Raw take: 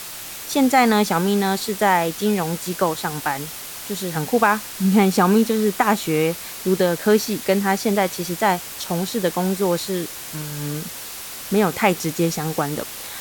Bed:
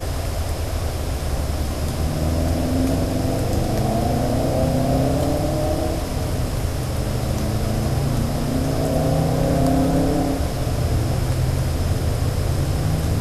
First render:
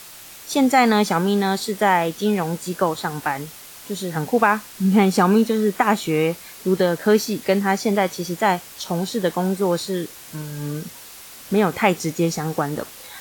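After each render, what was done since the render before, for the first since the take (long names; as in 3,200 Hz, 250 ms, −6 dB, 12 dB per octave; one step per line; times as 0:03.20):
noise reduction from a noise print 7 dB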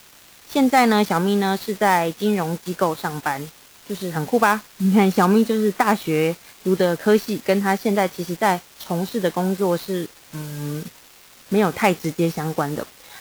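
gap after every zero crossing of 0.079 ms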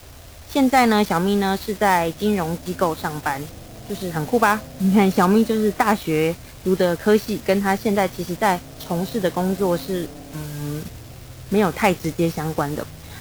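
mix in bed −19 dB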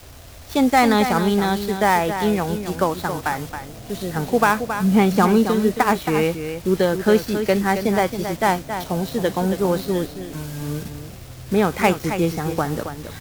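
single-tap delay 272 ms −9 dB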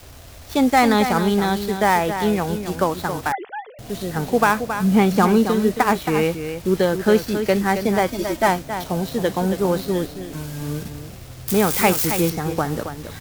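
0:03.32–0:03.79: three sine waves on the formant tracks
0:08.08–0:08.48: comb filter 3.2 ms
0:11.48–0:12.30: spike at every zero crossing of −13 dBFS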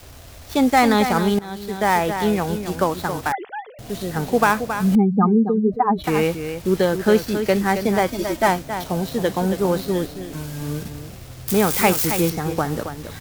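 0:01.39–0:01.98: fade in, from −19.5 dB
0:04.95–0:06.04: expanding power law on the bin magnitudes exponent 2.4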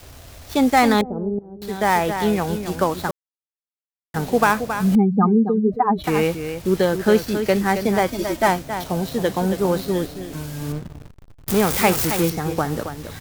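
0:01.01–0:01.62: transistor ladder low-pass 610 Hz, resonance 30%
0:03.11–0:04.14: silence
0:10.72–0:12.24: slack as between gear wheels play −23 dBFS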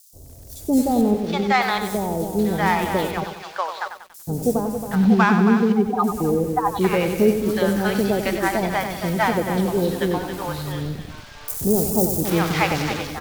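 three-band delay without the direct sound highs, lows, mids 130/770 ms, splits 650/5,700 Hz
feedback echo at a low word length 94 ms, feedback 55%, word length 7 bits, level −8.5 dB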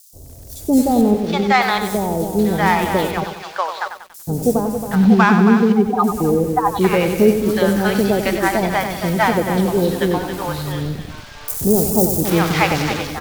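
level +4 dB
brickwall limiter −1 dBFS, peak gain reduction 1 dB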